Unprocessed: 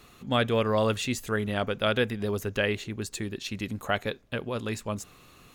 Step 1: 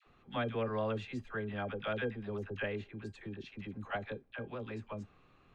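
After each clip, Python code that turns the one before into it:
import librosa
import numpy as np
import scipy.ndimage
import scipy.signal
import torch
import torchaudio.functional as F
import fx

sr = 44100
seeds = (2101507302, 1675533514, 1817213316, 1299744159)

y = scipy.signal.sosfilt(scipy.signal.butter(2, 2300.0, 'lowpass', fs=sr, output='sos'), x)
y = fx.comb_fb(y, sr, f0_hz=800.0, decay_s=0.18, harmonics='all', damping=0.0, mix_pct=70)
y = fx.dispersion(y, sr, late='lows', ms=66.0, hz=690.0)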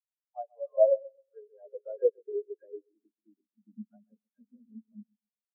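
y = fx.echo_bbd(x, sr, ms=132, stages=2048, feedback_pct=57, wet_db=-7.5)
y = fx.filter_sweep_highpass(y, sr, from_hz=720.0, to_hz=220.0, start_s=0.44, end_s=3.76, q=3.1)
y = fx.spectral_expand(y, sr, expansion=4.0)
y = y * 10.0 ** (6.5 / 20.0)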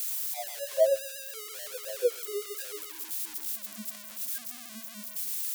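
y = x + 0.5 * 10.0 ** (-22.5 / 20.0) * np.diff(np.sign(x), prepend=np.sign(x[:1]))
y = y * 10.0 ** (-1.5 / 20.0)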